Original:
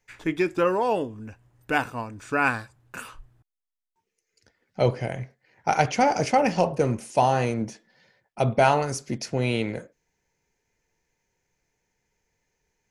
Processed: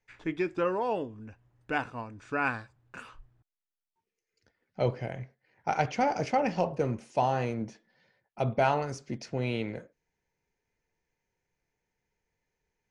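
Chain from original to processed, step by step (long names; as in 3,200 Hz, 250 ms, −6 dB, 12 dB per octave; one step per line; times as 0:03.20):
high-frequency loss of the air 97 metres
level −6 dB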